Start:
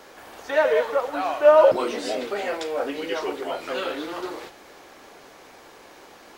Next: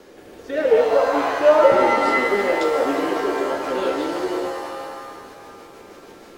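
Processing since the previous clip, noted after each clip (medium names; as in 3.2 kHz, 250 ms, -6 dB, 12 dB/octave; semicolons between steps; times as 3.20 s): rotary cabinet horn 0.65 Hz, later 6.3 Hz, at 2.98 s; resonant low shelf 570 Hz +7 dB, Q 1.5; pitch-shifted reverb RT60 1.8 s, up +7 st, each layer -2 dB, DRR 4 dB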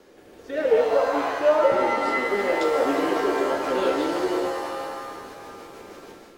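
level rider gain up to 7 dB; trim -6.5 dB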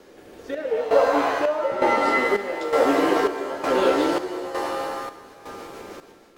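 square tremolo 1.1 Hz, depth 65%, duty 60%; trim +3.5 dB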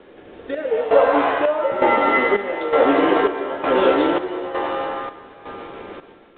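resampled via 8 kHz; trim +3.5 dB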